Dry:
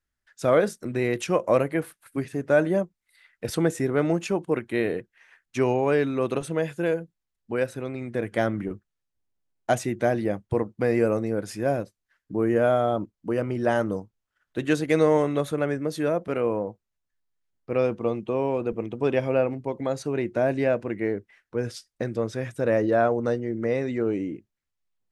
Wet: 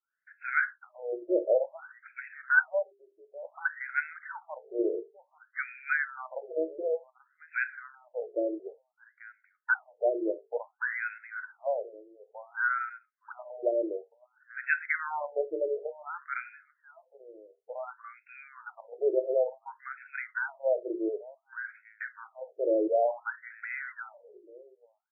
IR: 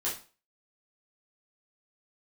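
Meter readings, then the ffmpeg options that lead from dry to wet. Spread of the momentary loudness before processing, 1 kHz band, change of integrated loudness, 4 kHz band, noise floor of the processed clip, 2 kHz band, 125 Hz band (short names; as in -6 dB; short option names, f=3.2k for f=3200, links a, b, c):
11 LU, -6.5 dB, -6.0 dB, under -40 dB, -76 dBFS, +3.5 dB, under -40 dB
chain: -filter_complex "[0:a]highpass=300,equalizer=f=320:t=q:w=4:g=4,equalizer=f=480:t=q:w=4:g=-5,equalizer=f=730:t=q:w=4:g=-5,equalizer=f=1.1k:t=q:w=4:g=-10,equalizer=f=1.5k:t=q:w=4:g=9,equalizer=f=2.2k:t=q:w=4:g=3,lowpass=f=2.4k:w=0.5412,lowpass=f=2.4k:w=1.3066,bandreject=f=50:t=h:w=6,bandreject=f=100:t=h:w=6,bandreject=f=150:t=h:w=6,bandreject=f=200:t=h:w=6,bandreject=f=250:t=h:w=6,bandreject=f=300:t=h:w=6,bandreject=f=350:t=h:w=6,bandreject=f=400:t=h:w=6,bandreject=f=450:t=h:w=6,aecho=1:1:838:0.0891,asplit=2[a][b];[1:a]atrim=start_sample=2205,atrim=end_sample=3969[c];[b][c]afir=irnorm=-1:irlink=0,volume=-17dB[d];[a][d]amix=inputs=2:normalize=0,afftfilt=real='re*between(b*sr/1024,460*pow(1900/460,0.5+0.5*sin(2*PI*0.56*pts/sr))/1.41,460*pow(1900/460,0.5+0.5*sin(2*PI*0.56*pts/sr))*1.41)':imag='im*between(b*sr/1024,460*pow(1900/460,0.5+0.5*sin(2*PI*0.56*pts/sr))/1.41,460*pow(1900/460,0.5+0.5*sin(2*PI*0.56*pts/sr))*1.41)':win_size=1024:overlap=0.75"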